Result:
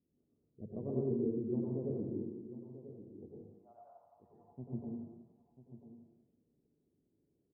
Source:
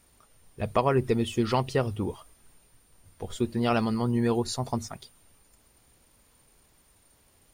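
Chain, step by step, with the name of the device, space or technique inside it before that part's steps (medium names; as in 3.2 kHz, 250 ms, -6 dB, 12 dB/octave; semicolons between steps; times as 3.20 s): frequency weighting A; bass shelf 430 Hz +8 dB; 3.33–4.52 s: steep high-pass 640 Hz 72 dB/octave; next room (low-pass 340 Hz 24 dB/octave; reverberation RT60 1.1 s, pre-delay 90 ms, DRR -5 dB); delay 991 ms -13 dB; trim -7.5 dB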